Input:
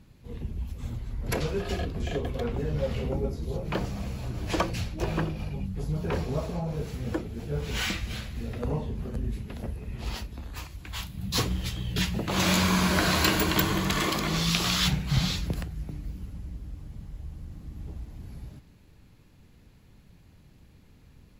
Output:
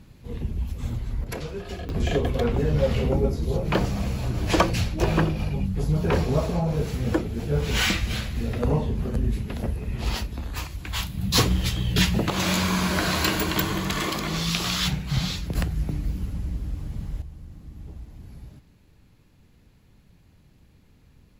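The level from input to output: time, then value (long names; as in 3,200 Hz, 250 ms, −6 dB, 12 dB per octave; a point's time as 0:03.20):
+5.5 dB
from 0:01.24 −4 dB
from 0:01.89 +7 dB
from 0:12.30 0 dB
from 0:15.55 +9 dB
from 0:17.22 −1 dB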